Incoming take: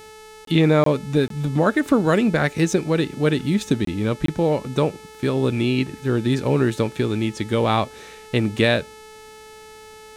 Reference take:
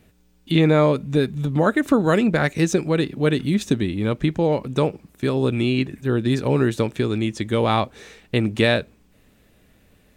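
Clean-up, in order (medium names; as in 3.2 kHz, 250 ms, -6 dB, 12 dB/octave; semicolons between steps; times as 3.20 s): de-hum 434 Hz, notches 28; interpolate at 0.45/0.84/1.28/3.85/4.26 s, 23 ms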